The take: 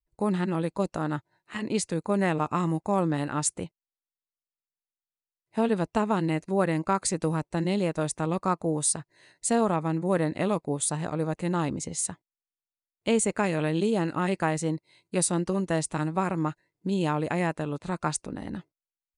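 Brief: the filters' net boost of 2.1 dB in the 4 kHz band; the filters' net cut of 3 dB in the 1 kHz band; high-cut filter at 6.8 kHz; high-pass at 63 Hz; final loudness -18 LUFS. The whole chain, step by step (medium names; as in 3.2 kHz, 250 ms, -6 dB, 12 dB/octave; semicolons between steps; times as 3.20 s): high-pass 63 Hz; low-pass 6.8 kHz; peaking EQ 1 kHz -4 dB; peaking EQ 4 kHz +3.5 dB; trim +11 dB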